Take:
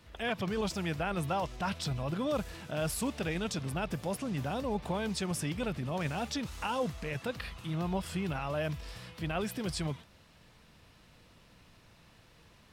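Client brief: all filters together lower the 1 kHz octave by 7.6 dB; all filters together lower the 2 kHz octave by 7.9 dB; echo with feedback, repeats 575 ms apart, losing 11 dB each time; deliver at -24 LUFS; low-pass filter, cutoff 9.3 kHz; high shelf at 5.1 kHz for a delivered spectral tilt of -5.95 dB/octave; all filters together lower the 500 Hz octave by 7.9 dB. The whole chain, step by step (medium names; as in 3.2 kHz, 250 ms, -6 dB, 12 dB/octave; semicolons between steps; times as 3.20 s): low-pass 9.3 kHz; peaking EQ 500 Hz -8 dB; peaking EQ 1 kHz -5 dB; peaking EQ 2 kHz -8 dB; treble shelf 5.1 kHz -5 dB; feedback delay 575 ms, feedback 28%, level -11 dB; trim +14 dB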